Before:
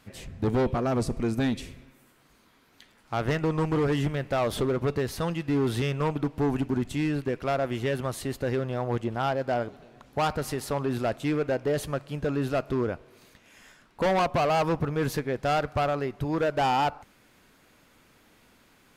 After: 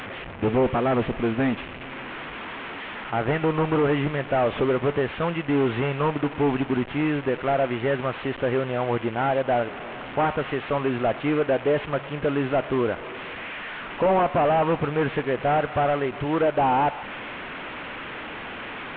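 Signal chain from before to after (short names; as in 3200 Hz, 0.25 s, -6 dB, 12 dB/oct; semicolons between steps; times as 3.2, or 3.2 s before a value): delta modulation 16 kbps, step -34.5 dBFS; low shelf 230 Hz -10.5 dB; gain +7.5 dB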